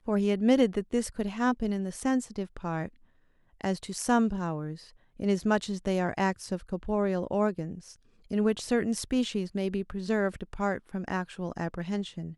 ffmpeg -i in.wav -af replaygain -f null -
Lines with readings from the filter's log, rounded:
track_gain = +9.3 dB
track_peak = 0.213